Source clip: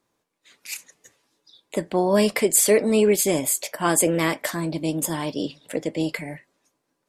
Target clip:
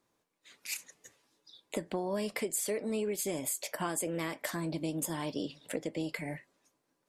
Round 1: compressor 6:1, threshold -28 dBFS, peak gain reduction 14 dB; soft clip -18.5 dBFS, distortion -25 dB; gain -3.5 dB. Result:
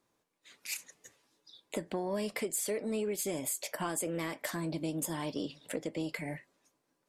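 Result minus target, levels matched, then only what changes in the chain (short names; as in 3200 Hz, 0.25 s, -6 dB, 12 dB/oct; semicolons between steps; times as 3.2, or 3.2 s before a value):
soft clip: distortion +19 dB
change: soft clip -8 dBFS, distortion -44 dB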